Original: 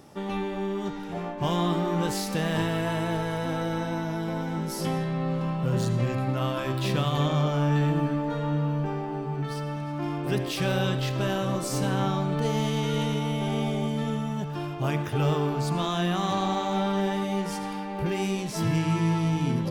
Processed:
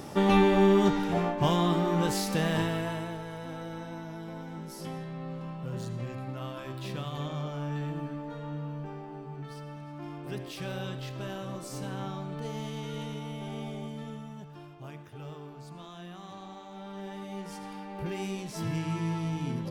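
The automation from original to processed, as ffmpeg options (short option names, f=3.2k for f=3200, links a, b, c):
-af "volume=20.5dB,afade=t=out:st=0.73:d=0.85:silence=0.334965,afade=t=out:st=2.43:d=0.73:silence=0.316228,afade=t=out:st=13.77:d=1.26:silence=0.398107,afade=t=in:st=16.76:d=1.24:silence=0.266073"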